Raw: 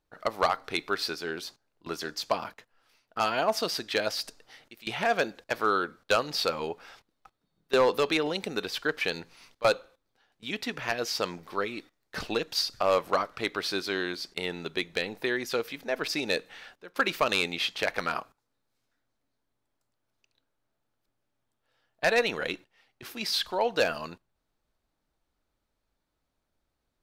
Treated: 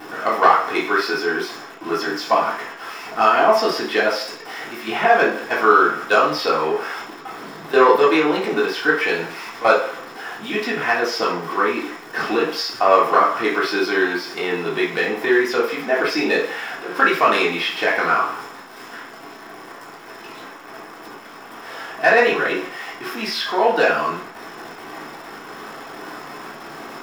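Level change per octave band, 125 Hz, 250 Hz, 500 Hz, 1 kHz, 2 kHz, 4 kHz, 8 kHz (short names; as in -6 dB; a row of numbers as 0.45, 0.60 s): +5.5, +12.0, +11.0, +14.0, +12.0, +4.5, +3.0 dB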